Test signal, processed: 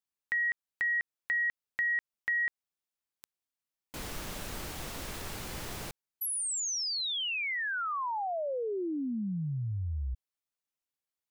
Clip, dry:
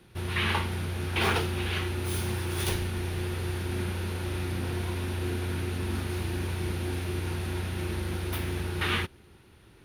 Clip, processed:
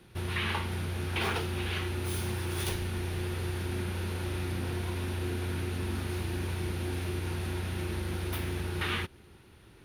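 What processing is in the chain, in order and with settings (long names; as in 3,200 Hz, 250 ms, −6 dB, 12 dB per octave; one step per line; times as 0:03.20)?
downward compressor 2 to 1, threshold −31 dBFS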